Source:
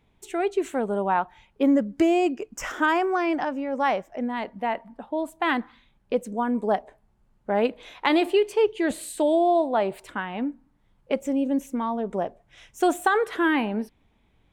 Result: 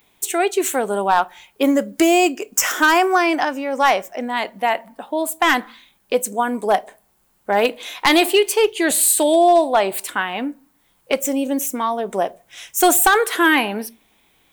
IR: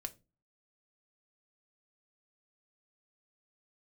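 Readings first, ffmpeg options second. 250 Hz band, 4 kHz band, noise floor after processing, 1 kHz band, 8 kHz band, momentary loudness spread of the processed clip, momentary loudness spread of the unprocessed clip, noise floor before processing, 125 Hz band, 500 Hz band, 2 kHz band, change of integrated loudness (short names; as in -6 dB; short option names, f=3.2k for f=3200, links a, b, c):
+3.5 dB, +13.0 dB, -62 dBFS, +8.0 dB, +21.5 dB, 11 LU, 11 LU, -65 dBFS, n/a, +5.5 dB, +10.0 dB, +7.0 dB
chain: -filter_complex "[0:a]aemphasis=mode=production:type=riaa,asoftclip=type=hard:threshold=-15.5dB,asplit=2[a][b];[1:a]atrim=start_sample=2205[c];[b][c]afir=irnorm=-1:irlink=0,volume=-1.5dB[d];[a][d]amix=inputs=2:normalize=0,volume=4.5dB"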